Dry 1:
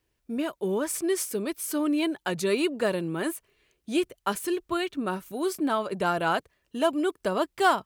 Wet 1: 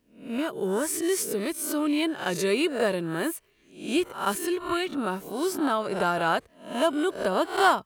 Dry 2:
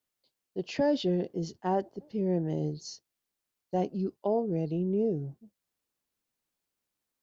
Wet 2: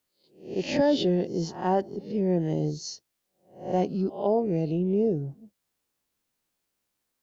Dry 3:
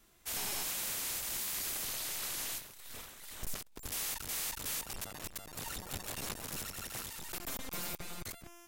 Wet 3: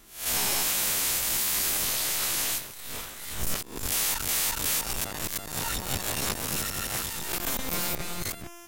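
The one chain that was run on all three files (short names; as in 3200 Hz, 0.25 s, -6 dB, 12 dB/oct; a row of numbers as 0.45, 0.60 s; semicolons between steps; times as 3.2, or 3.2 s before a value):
spectral swells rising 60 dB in 0.44 s; match loudness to -27 LUFS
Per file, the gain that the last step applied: 0.0, +3.5, +9.0 dB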